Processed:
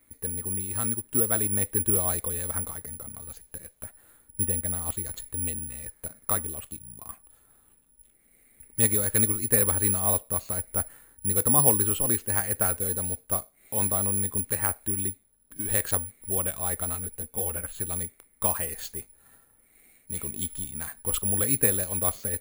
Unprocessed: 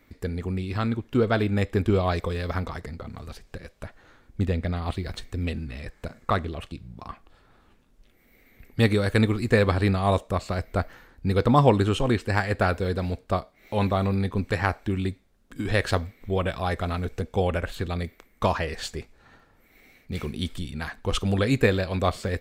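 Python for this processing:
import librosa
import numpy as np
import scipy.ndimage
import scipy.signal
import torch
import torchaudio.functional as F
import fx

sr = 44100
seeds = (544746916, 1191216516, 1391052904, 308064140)

y = (np.kron(scipy.signal.resample_poly(x, 1, 4), np.eye(4)[0]) * 4)[:len(x)]
y = fx.ensemble(y, sr, at=(16.94, 17.73), fade=0.02)
y = F.gain(torch.from_numpy(y), -8.5).numpy()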